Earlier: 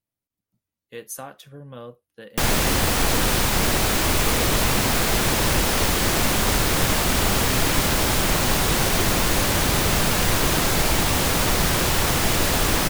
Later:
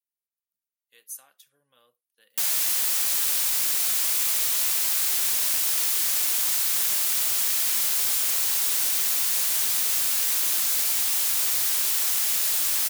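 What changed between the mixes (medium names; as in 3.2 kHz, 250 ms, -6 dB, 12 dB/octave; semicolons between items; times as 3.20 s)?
speech -4.5 dB; master: add differentiator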